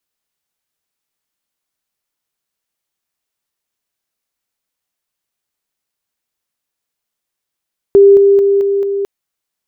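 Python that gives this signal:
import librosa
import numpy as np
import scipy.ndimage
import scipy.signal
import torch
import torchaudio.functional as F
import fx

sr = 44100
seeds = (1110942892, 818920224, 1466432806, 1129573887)

y = fx.level_ladder(sr, hz=398.0, from_db=-2.0, step_db=-3.0, steps=5, dwell_s=0.22, gap_s=0.0)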